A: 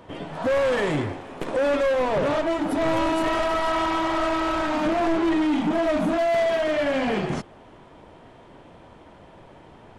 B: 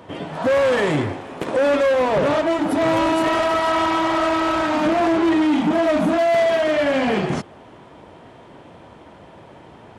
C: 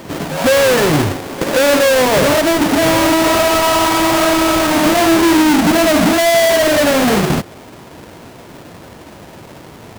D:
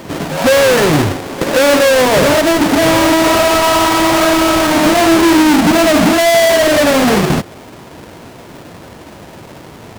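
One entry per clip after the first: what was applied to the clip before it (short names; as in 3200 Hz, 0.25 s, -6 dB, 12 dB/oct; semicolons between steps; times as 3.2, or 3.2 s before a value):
HPF 68 Hz; gain +4.5 dB
half-waves squared off; pre-echo 0.155 s -14.5 dB; gain +3 dB
Doppler distortion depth 0.22 ms; gain +2 dB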